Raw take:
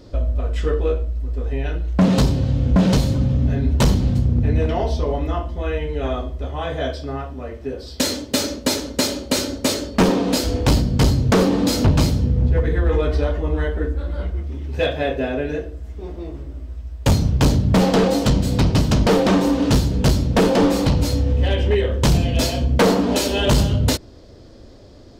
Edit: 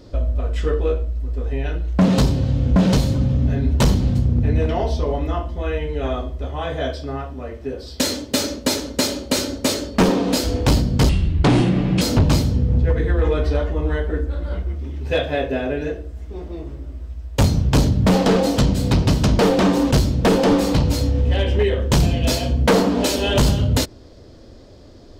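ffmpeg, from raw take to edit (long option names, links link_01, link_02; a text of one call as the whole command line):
ffmpeg -i in.wav -filter_complex "[0:a]asplit=4[link_01][link_02][link_03][link_04];[link_01]atrim=end=11.094[link_05];[link_02]atrim=start=11.09:end=11.69,asetpts=PTS-STARTPTS,asetrate=28665,aresample=44100[link_06];[link_03]atrim=start=11.686:end=19.592[link_07];[link_04]atrim=start=20.028[link_08];[link_05][link_06]acrossfade=duration=0.004:curve1=hsin:curve2=hsin[link_09];[link_09][link_07]acrossfade=duration=0.004:curve1=hsin:curve2=hsin[link_10];[link_10][link_08]acrossfade=duration=0.004:curve1=hsin:curve2=hsin" out.wav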